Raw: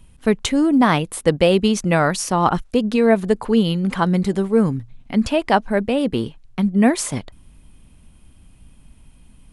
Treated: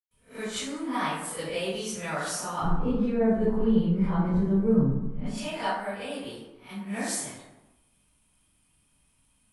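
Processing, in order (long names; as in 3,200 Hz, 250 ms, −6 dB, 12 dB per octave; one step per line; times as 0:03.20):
peak hold with a rise ahead of every peak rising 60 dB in 0.31 s
spectral tilt +2.5 dB per octave, from 0:02.50 −3.5 dB per octave, from 0:05.14 +3 dB per octave
convolution reverb RT60 1.0 s, pre-delay 107 ms, DRR −60 dB
level −7.5 dB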